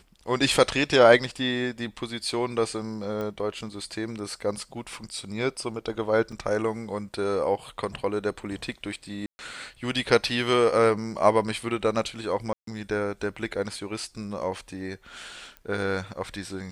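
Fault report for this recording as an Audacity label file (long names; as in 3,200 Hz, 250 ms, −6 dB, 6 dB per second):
3.210000	3.210000	click −21 dBFS
6.320000	6.320000	drop-out 4 ms
9.260000	9.390000	drop-out 130 ms
12.530000	12.670000	drop-out 143 ms
15.570000	15.570000	click −25 dBFS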